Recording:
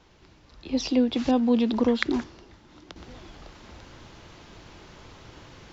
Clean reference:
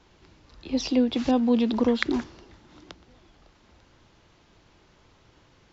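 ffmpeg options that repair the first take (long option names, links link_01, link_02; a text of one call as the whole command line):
ffmpeg -i in.wav -af "agate=range=-21dB:threshold=-45dB,asetnsamples=nb_out_samples=441:pad=0,asendcmd='2.96 volume volume -11dB',volume=0dB" out.wav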